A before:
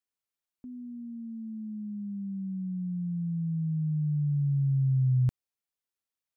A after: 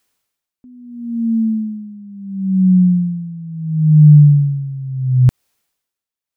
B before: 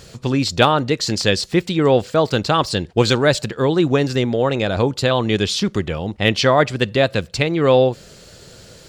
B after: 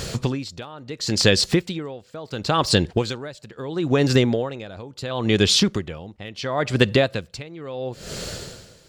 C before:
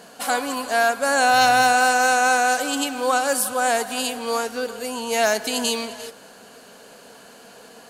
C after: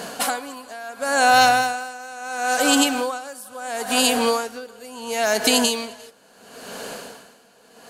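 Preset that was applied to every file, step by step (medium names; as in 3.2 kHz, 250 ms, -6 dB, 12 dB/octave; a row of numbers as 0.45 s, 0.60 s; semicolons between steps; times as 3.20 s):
compression 5:1, threshold -25 dBFS; logarithmic tremolo 0.73 Hz, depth 22 dB; peak normalisation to -1.5 dBFS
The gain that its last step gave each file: +24.0 dB, +12.0 dB, +12.5 dB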